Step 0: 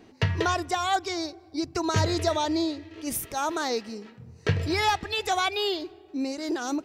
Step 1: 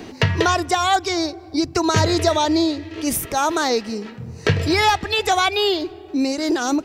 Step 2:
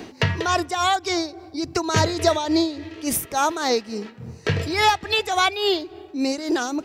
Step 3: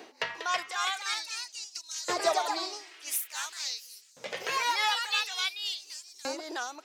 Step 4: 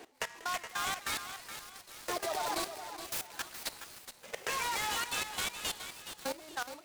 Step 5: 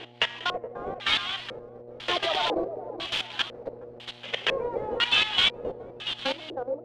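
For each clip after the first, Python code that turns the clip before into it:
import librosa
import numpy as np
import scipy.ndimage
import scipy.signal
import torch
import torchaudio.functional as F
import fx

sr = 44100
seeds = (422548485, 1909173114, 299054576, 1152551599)

y1 = fx.band_squash(x, sr, depth_pct=40)
y1 = y1 * librosa.db_to_amplitude(8.0)
y2 = fx.low_shelf(y1, sr, hz=100.0, db=-5.5)
y2 = y2 * (1.0 - 0.62 / 2.0 + 0.62 / 2.0 * np.cos(2.0 * np.pi * 3.5 * (np.arange(len(y2)) / sr)))
y3 = fx.echo_wet_highpass(y2, sr, ms=775, feedback_pct=72, hz=5300.0, wet_db=-19.5)
y3 = fx.echo_pitch(y3, sr, ms=348, semitones=2, count=2, db_per_echo=-3.0)
y3 = fx.filter_lfo_highpass(y3, sr, shape='saw_up', hz=0.48, low_hz=480.0, high_hz=6300.0, q=0.96)
y3 = y3 * librosa.db_to_amplitude(-8.5)
y4 = fx.level_steps(y3, sr, step_db=17)
y4 = fx.echo_feedback(y4, sr, ms=420, feedback_pct=35, wet_db=-10.0)
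y4 = fx.noise_mod_delay(y4, sr, seeds[0], noise_hz=3900.0, depth_ms=0.043)
y5 = fx.dmg_buzz(y4, sr, base_hz=120.0, harmonics=7, level_db=-60.0, tilt_db=-2, odd_only=False)
y5 = fx.filter_lfo_lowpass(y5, sr, shape='square', hz=1.0, low_hz=500.0, high_hz=3200.0, q=5.6)
y5 = y5 * librosa.db_to_amplitude(6.5)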